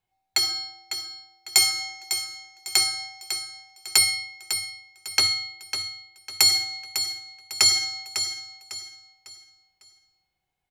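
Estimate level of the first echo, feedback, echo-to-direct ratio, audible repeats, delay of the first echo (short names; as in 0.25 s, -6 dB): -9.0 dB, 34%, -8.5 dB, 3, 0.551 s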